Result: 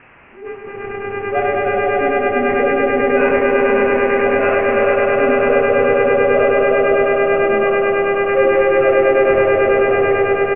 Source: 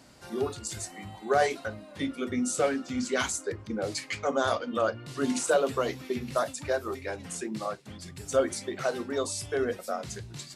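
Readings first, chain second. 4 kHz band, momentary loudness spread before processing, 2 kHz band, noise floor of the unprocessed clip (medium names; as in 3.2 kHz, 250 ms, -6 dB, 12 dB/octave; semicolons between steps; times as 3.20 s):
no reading, 11 LU, +18.0 dB, -48 dBFS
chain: spectral contrast enhancement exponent 2.1; mains buzz 400 Hz, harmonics 12, -45 dBFS -5 dB/octave; doubling 28 ms -8.5 dB; echo with a slow build-up 100 ms, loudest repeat 5, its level -4.5 dB; expander -22 dBFS; high-pass 170 Hz 12 dB/octave; loudspeakers at several distances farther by 24 m -2 dB, 68 m -6 dB; sample-and-hold 11×; added noise white -41 dBFS; steep low-pass 2.7 kHz 96 dB/octave; attacks held to a fixed rise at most 120 dB/s; trim +4.5 dB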